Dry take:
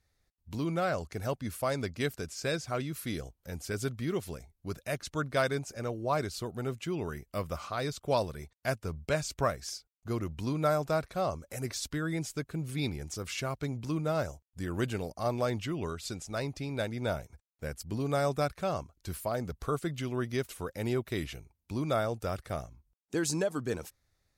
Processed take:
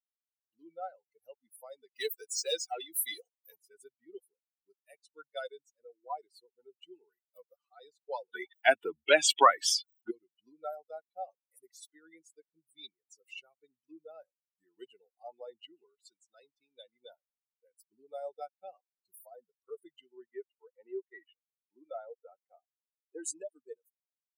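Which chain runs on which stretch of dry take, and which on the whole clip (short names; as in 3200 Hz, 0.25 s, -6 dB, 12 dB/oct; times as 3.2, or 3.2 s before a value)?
1.95–3.58 low shelf 340 Hz -10 dB + notches 50/100/150/200/250 Hz + sample leveller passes 3
8.33–10.11 band shelf 1600 Hz +11 dB 2.4 oct + small resonant body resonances 290/3300 Hz, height 13 dB, ringing for 20 ms + fast leveller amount 50%
20.29–23.21 low shelf 220 Hz -10.5 dB + sample leveller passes 1 + LPF 2200 Hz
whole clip: per-bin expansion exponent 3; HPF 450 Hz 24 dB/oct; dynamic EQ 1600 Hz, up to -4 dB, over -51 dBFS, Q 1.1; gain +5 dB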